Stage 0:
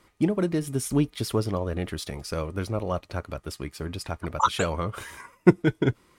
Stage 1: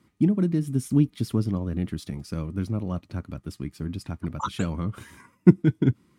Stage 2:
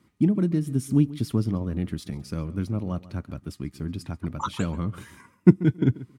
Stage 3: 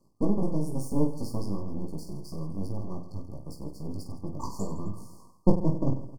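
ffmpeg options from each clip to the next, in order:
-af "highpass=93,lowshelf=f=350:t=q:w=1.5:g=11,volume=0.422"
-filter_complex "[0:a]asplit=2[s0][s1];[s1]adelay=137,lowpass=f=4800:p=1,volume=0.126,asplit=2[s2][s3];[s3]adelay=137,lowpass=f=4800:p=1,volume=0.15[s4];[s0][s2][s4]amix=inputs=3:normalize=0"
-af "aeval=exprs='max(val(0),0)':c=same,afftfilt=real='re*(1-between(b*sr/4096,1200,4300))':imag='im*(1-between(b*sr/4096,1200,4300))':win_size=4096:overlap=0.75,aecho=1:1:20|50|95|162.5|263.8:0.631|0.398|0.251|0.158|0.1,volume=0.841"

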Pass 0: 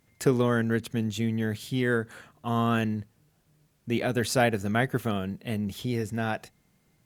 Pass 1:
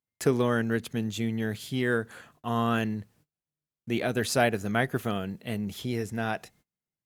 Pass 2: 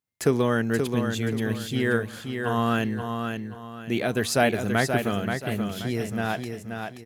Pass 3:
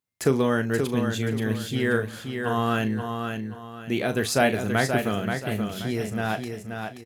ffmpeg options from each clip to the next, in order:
-af "lowshelf=f=220:g=-3.5,agate=range=0.0398:threshold=0.00112:ratio=16:detection=peak"
-af "aecho=1:1:529|1058|1587|2116:0.501|0.165|0.0546|0.018,volume=1.33"
-filter_complex "[0:a]asplit=2[s0][s1];[s1]adelay=37,volume=0.282[s2];[s0][s2]amix=inputs=2:normalize=0"

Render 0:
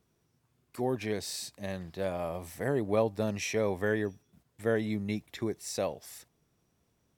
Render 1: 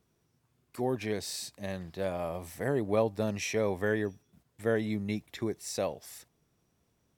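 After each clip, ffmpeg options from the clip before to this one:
-af anull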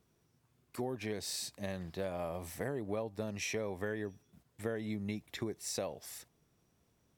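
-af "acompressor=threshold=0.02:ratio=6"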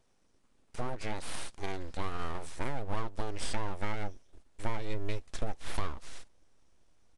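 -af "aeval=exprs='abs(val(0))':c=same,asubboost=boost=3:cutoff=83,aresample=22050,aresample=44100,volume=1.58"

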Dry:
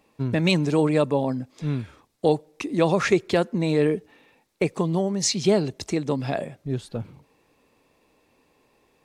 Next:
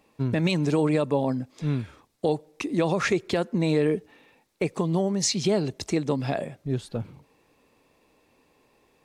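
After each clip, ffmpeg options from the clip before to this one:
-af "alimiter=limit=0.211:level=0:latency=1:release=130"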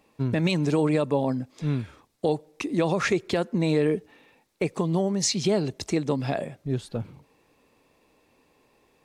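-af anull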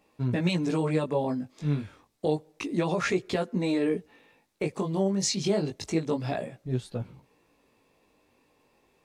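-af "flanger=delay=16:depth=4.7:speed=0.29"

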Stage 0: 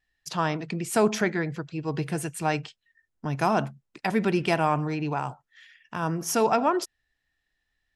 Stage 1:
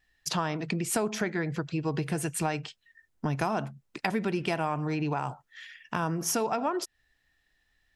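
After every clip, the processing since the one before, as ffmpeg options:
-af "acompressor=threshold=0.0224:ratio=5,volume=2"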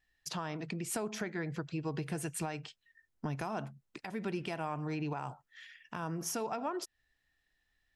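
-af "alimiter=limit=0.106:level=0:latency=1:release=214,volume=0.473"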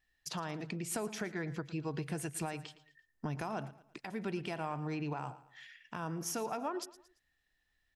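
-af "aecho=1:1:113|226|339:0.141|0.0565|0.0226,volume=0.891"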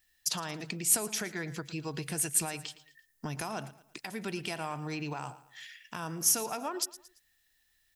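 -af "crystalizer=i=4.5:c=0"

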